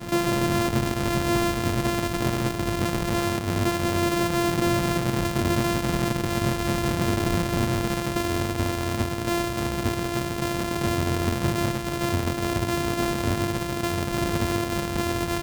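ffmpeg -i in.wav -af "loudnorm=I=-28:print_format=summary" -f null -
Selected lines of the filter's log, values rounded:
Input Integrated:    -25.3 LUFS
Input True Peak:     -15.9 dBTP
Input LRA:             1.9 LU
Input Threshold:     -35.3 LUFS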